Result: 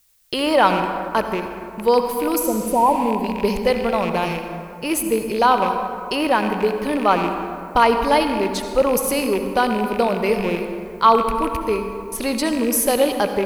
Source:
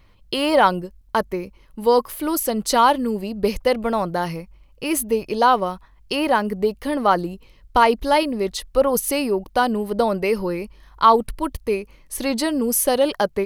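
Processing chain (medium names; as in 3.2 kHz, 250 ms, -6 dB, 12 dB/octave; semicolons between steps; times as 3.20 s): rattle on loud lows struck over -30 dBFS, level -20 dBFS; spectral replace 2.46–3.07 s, 1.1–9.2 kHz both; gate -40 dBFS, range -24 dB; added noise blue -60 dBFS; on a send: reverberation RT60 2.5 s, pre-delay 58 ms, DRR 6 dB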